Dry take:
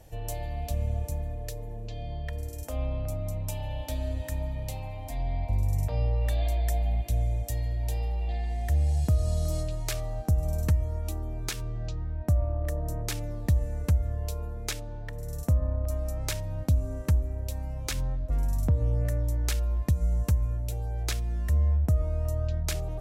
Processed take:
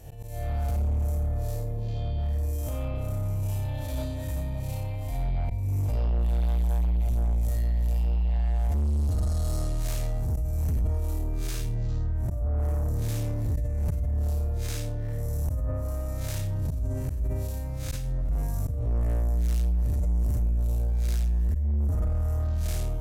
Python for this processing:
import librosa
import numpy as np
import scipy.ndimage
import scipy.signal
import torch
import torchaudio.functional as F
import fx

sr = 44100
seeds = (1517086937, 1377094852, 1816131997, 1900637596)

p1 = fx.spec_blur(x, sr, span_ms=138.0)
p2 = fx.highpass(p1, sr, hz=61.0, slope=6)
p3 = fx.high_shelf(p2, sr, hz=8700.0, db=8.0)
p4 = p3 + fx.room_early_taps(p3, sr, ms=(54, 71), db=(-5.5, -10.0), dry=0)
p5 = fx.auto_swell(p4, sr, attack_ms=287.0)
p6 = 10.0 ** (-32.0 / 20.0) * np.tanh(p5 / 10.0 ** (-32.0 / 20.0))
p7 = fx.low_shelf(p6, sr, hz=140.0, db=9.5)
p8 = fx.sustainer(p7, sr, db_per_s=21.0)
y = F.gain(torch.from_numpy(p8), 2.0).numpy()